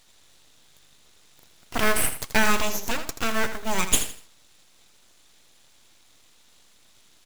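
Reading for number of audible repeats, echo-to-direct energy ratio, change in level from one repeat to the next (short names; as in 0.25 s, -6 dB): 3, -10.0 dB, -11.0 dB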